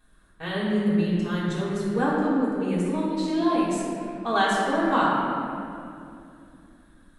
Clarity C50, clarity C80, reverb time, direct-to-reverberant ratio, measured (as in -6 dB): -2.0 dB, -0.5 dB, 2.6 s, -11.5 dB